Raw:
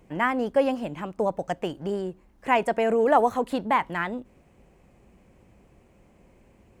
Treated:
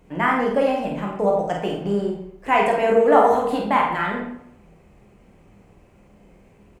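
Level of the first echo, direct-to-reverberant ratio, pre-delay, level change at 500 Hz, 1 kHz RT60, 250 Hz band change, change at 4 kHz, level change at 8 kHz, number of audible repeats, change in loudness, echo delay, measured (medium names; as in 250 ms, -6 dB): -5.0 dB, -2.0 dB, 8 ms, +5.5 dB, 0.75 s, +4.5 dB, +4.5 dB, no reading, 1, +5.0 dB, 49 ms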